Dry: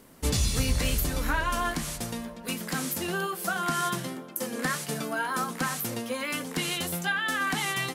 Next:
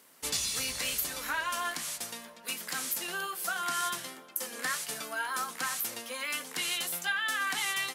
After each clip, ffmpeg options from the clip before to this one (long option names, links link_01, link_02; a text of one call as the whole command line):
ffmpeg -i in.wav -af "highpass=frequency=1500:poles=1" out.wav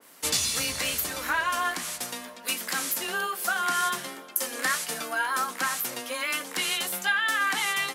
ffmpeg -i in.wav -af "afreqshift=16,adynamicequalizer=threshold=0.00562:dfrequency=2300:dqfactor=0.7:tfrequency=2300:tqfactor=0.7:attack=5:release=100:ratio=0.375:range=2.5:mode=cutabove:tftype=highshelf,volume=7dB" out.wav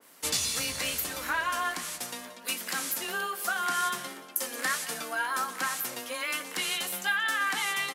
ffmpeg -i in.wav -af "aecho=1:1:179:0.168,volume=-3dB" out.wav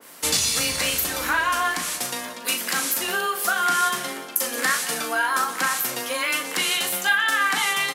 ffmpeg -i in.wav -filter_complex "[0:a]asplit=2[link_01][link_02];[link_02]acompressor=threshold=-38dB:ratio=6,volume=-1.5dB[link_03];[link_01][link_03]amix=inputs=2:normalize=0,asplit=2[link_04][link_05];[link_05]adelay=39,volume=-7.5dB[link_06];[link_04][link_06]amix=inputs=2:normalize=0,volume=5dB" out.wav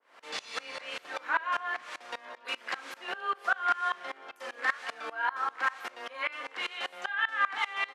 ffmpeg -i in.wav -af "highpass=540,lowpass=2300,aeval=exprs='val(0)*pow(10,-23*if(lt(mod(-5.1*n/s,1),2*abs(-5.1)/1000),1-mod(-5.1*n/s,1)/(2*abs(-5.1)/1000),(mod(-5.1*n/s,1)-2*abs(-5.1)/1000)/(1-2*abs(-5.1)/1000))/20)':channel_layout=same" out.wav